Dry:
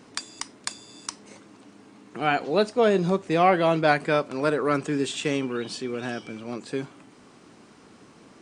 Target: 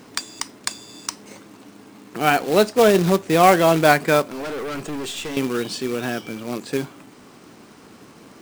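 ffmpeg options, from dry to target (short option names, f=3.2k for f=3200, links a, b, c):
-filter_complex "[0:a]asettb=1/sr,asplit=3[a][b][c];[a]atrim=end=4.294[d];[b]atrim=start=4.29:end=5.37,asetpts=PTS-STARTPTS,afade=t=in:d=0.004:c=qsin,afade=t=out:st=1.076:d=0.004:c=qsin,aeval=exprs='(tanh(39.8*val(0)+0.3)-tanh(0.3))/39.8':c=same[e];[c]atrim=start=5.366[f];[d][e]acrossfade=d=0.004:c1=hsin:c2=qsin[g];[g][f]acrossfade=d=0.004:c1=qsin:c2=hsin,acrusher=bits=3:mode=log:mix=0:aa=0.000001,volume=5.5dB"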